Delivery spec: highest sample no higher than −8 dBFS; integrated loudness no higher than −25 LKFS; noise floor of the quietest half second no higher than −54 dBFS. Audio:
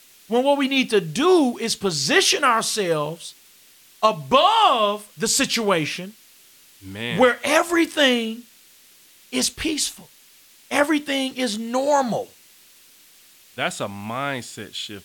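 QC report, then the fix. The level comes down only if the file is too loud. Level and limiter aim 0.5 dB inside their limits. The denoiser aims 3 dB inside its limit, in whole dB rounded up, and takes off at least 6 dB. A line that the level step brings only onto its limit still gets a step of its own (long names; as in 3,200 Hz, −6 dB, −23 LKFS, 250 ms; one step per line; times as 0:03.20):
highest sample −2.5 dBFS: out of spec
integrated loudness −20.5 LKFS: out of spec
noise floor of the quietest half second −52 dBFS: out of spec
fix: level −5 dB
brickwall limiter −8.5 dBFS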